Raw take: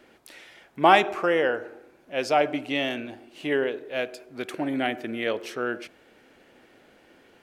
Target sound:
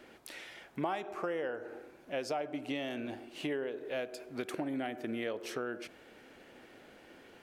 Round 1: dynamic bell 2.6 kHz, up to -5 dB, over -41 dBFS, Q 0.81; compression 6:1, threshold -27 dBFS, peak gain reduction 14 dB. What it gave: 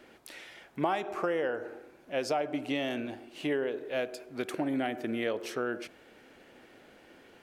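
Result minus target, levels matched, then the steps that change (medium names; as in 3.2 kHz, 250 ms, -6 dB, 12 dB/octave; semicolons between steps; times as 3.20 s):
compression: peak gain reduction -5.5 dB
change: compression 6:1, threshold -33.5 dBFS, peak gain reduction 19.5 dB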